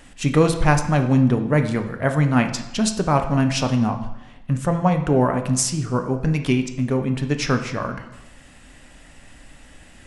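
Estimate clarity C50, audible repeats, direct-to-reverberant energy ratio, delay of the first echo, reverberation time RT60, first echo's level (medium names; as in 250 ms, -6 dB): 9.5 dB, no echo, 6.0 dB, no echo, 0.95 s, no echo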